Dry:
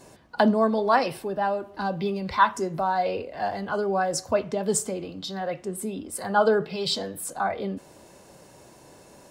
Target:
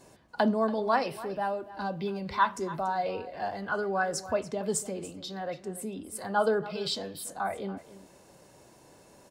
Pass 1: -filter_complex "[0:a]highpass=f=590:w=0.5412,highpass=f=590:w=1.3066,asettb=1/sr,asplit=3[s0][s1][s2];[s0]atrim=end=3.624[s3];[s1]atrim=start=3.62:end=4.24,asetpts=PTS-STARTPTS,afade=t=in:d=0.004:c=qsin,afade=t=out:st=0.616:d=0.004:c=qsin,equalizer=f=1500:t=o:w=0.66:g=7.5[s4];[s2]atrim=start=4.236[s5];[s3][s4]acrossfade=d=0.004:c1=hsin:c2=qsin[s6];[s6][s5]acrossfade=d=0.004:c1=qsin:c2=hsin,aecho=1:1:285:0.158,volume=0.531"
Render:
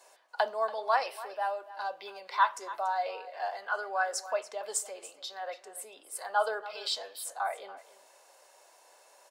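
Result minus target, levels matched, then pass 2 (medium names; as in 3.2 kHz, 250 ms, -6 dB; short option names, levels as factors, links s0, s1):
500 Hz band -2.5 dB
-filter_complex "[0:a]asettb=1/sr,asplit=3[s0][s1][s2];[s0]atrim=end=3.624[s3];[s1]atrim=start=3.62:end=4.24,asetpts=PTS-STARTPTS,afade=t=in:d=0.004:c=qsin,afade=t=out:st=0.616:d=0.004:c=qsin,equalizer=f=1500:t=o:w=0.66:g=7.5[s4];[s2]atrim=start=4.236[s5];[s3][s4]acrossfade=d=0.004:c1=hsin:c2=qsin[s6];[s6][s5]acrossfade=d=0.004:c1=qsin:c2=hsin,aecho=1:1:285:0.158,volume=0.531"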